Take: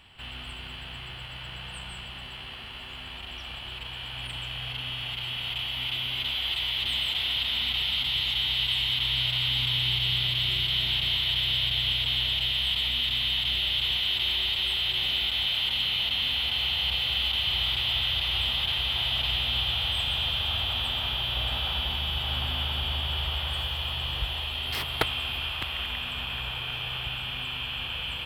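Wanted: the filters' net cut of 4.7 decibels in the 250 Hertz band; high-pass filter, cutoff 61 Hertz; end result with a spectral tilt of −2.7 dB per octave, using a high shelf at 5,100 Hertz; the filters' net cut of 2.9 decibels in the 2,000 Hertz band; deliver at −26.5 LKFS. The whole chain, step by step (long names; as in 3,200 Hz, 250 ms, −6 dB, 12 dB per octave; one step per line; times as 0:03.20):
high-pass filter 61 Hz
parametric band 250 Hz −8 dB
parametric band 2,000 Hz −5.5 dB
high-shelf EQ 5,100 Hz +5 dB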